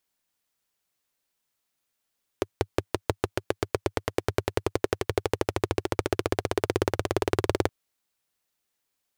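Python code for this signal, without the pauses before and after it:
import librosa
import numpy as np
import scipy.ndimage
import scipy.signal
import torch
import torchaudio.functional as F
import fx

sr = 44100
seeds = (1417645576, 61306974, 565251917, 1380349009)

y = fx.engine_single_rev(sr, seeds[0], length_s=5.27, rpm=600, resonances_hz=(100.0, 380.0), end_rpm=2300)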